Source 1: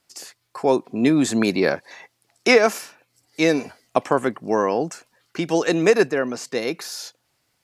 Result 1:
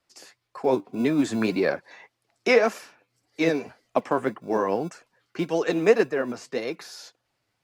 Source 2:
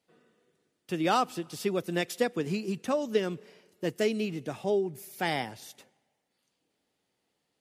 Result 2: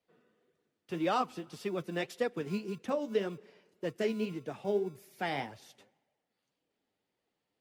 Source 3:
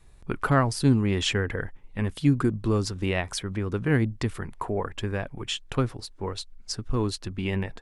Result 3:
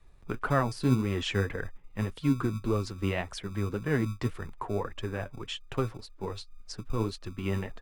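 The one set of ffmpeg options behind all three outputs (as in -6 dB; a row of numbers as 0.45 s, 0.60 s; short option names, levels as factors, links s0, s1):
-filter_complex "[0:a]highshelf=f=5500:g=-11.5,flanger=delay=1.6:depth=8.6:regen=47:speed=1.8:shape=sinusoidal,acrossover=split=160|2300[s0][s1][s2];[s0]acrusher=samples=36:mix=1:aa=0.000001[s3];[s3][s1][s2]amix=inputs=3:normalize=0"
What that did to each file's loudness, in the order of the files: -4.0 LU, -4.5 LU, -4.5 LU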